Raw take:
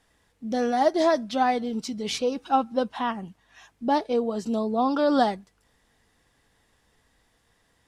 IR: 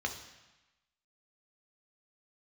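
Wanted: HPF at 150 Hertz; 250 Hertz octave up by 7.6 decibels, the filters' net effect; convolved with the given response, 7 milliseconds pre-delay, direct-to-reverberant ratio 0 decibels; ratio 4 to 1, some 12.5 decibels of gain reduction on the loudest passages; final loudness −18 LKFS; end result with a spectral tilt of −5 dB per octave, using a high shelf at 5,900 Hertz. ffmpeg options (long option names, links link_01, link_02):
-filter_complex "[0:a]highpass=150,equalizer=frequency=250:width_type=o:gain=9,highshelf=frequency=5900:gain=4.5,acompressor=threshold=-29dB:ratio=4,asplit=2[link_01][link_02];[1:a]atrim=start_sample=2205,adelay=7[link_03];[link_02][link_03]afir=irnorm=-1:irlink=0,volume=-4.5dB[link_04];[link_01][link_04]amix=inputs=2:normalize=0,volume=10dB"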